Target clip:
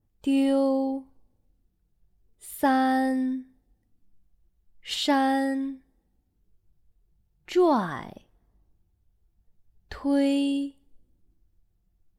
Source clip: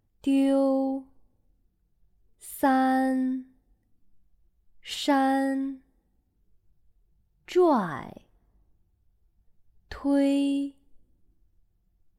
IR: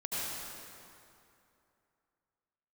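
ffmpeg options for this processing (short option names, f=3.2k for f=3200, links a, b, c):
-af "adynamicequalizer=threshold=0.00398:dfrequency=4100:dqfactor=0.92:tfrequency=4100:tqfactor=0.92:attack=5:release=100:ratio=0.375:range=2.5:mode=boostabove:tftype=bell"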